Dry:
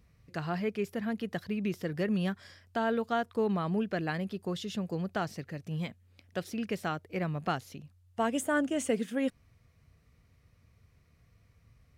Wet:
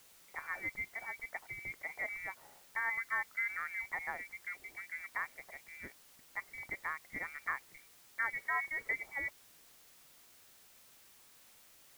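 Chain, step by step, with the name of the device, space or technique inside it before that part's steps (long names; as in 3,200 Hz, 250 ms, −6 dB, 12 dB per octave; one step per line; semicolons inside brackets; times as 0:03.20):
scrambled radio voice (band-pass filter 390–2,900 Hz; voice inversion scrambler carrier 2,500 Hz; white noise bed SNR 19 dB)
level −4.5 dB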